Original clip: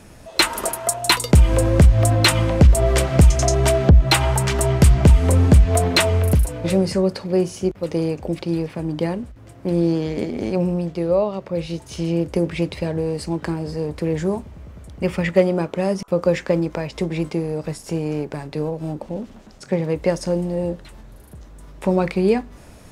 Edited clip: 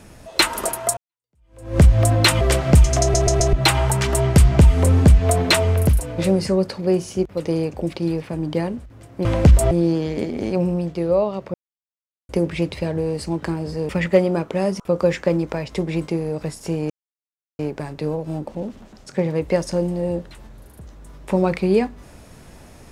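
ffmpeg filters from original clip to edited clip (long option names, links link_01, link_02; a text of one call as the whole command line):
ffmpeg -i in.wav -filter_complex "[0:a]asplit=13[link_01][link_02][link_03][link_04][link_05][link_06][link_07][link_08][link_09][link_10][link_11][link_12][link_13];[link_01]atrim=end=0.97,asetpts=PTS-STARTPTS,afade=type=out:start_time=0.966:duration=0.004:curve=hsin[link_14];[link_02]atrim=start=0.97:end=2.412,asetpts=PTS-STARTPTS,afade=type=in:duration=0.83:curve=exp[link_15];[link_03]atrim=start=2.868:end=3.602[link_16];[link_04]atrim=start=3.468:end=3.602[link_17];[link_05]atrim=start=3.468:end=3.602[link_18];[link_06]atrim=start=3.468:end=3.602[link_19];[link_07]atrim=start=3.988:end=9.712[link_20];[link_08]atrim=start=2.408:end=2.872[link_21];[link_09]atrim=start=9.708:end=11.54,asetpts=PTS-STARTPTS,afade=type=out:start_time=1.828:duration=0.004:curve=hsin[link_22];[link_10]atrim=start=11.54:end=12.29,asetpts=PTS-STARTPTS,volume=0[link_23];[link_11]atrim=start=12.29:end=13.892,asetpts=PTS-STARTPTS,afade=type=in:duration=0.004:curve=hsin[link_24];[link_12]atrim=start=15.118:end=18.13,asetpts=PTS-STARTPTS,afade=type=out:start_time=3.008:duration=0.004:curve=hsin,apad=pad_dur=0.69[link_25];[link_13]atrim=start=18.13,asetpts=PTS-STARTPTS,afade=type=in:duration=0.004:curve=hsin[link_26];[link_14][link_15]concat=n=2:v=0:a=1[link_27];[link_27][link_16]acrossfade=duration=0.004:curve1=hsin:curve2=hsin[link_28];[link_28][link_17]acrossfade=duration=0.004:curve1=hsin:curve2=hsin[link_29];[link_29][link_18]acrossfade=duration=0.004:curve1=hsin:curve2=hsin[link_30];[link_30][link_19]acrossfade=duration=0.004:curve1=hsin:curve2=hsin[link_31];[link_31][link_20]acrossfade=duration=0.004:curve1=hsin:curve2=hsin[link_32];[link_32][link_21]acrossfade=duration=0.004:curve1=hsin:curve2=hsin[link_33];[link_22][link_23][link_24]concat=n=3:v=0:a=1[link_34];[link_33][link_34]acrossfade=duration=0.004:curve1=hsin:curve2=hsin[link_35];[link_25][link_26]concat=n=2:v=0:a=1[link_36];[link_35][link_36]acrossfade=duration=0.004:curve1=hsin:curve2=hsin" out.wav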